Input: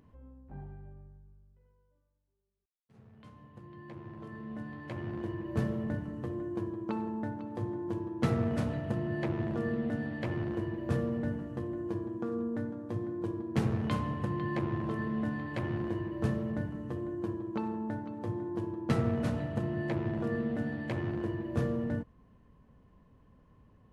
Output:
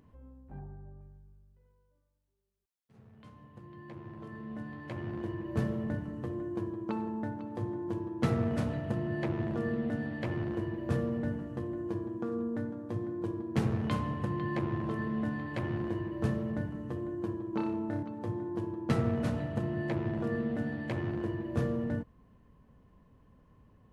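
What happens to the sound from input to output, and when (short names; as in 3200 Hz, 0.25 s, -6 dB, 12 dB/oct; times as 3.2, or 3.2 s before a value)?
0.59–1.01 LPF 1500 Hz 24 dB/oct
17.5–18.03 flutter echo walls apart 5.2 m, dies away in 0.46 s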